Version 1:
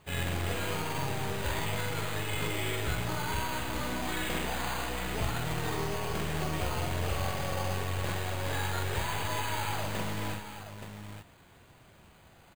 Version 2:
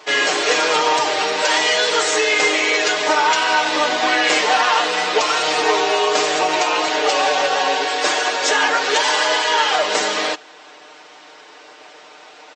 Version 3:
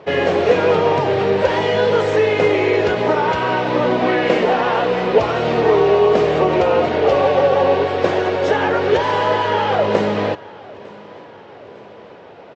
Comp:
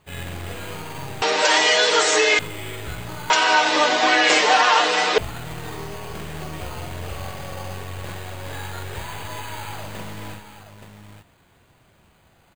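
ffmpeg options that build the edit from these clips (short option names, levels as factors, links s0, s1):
-filter_complex "[1:a]asplit=2[s0][s1];[0:a]asplit=3[s2][s3][s4];[s2]atrim=end=1.222[s5];[s0]atrim=start=1.218:end=2.392[s6];[s3]atrim=start=2.388:end=3.302[s7];[s1]atrim=start=3.298:end=5.182[s8];[s4]atrim=start=5.178[s9];[s5][s6]acrossfade=d=0.004:c1=hsin:c2=hsin[s10];[s10][s7]acrossfade=d=0.004:c1=hsin:c2=hsin[s11];[s11][s8]acrossfade=d=0.004:c1=hsin:c2=hsin[s12];[s12][s9]acrossfade=d=0.004:c1=hsin:c2=hsin"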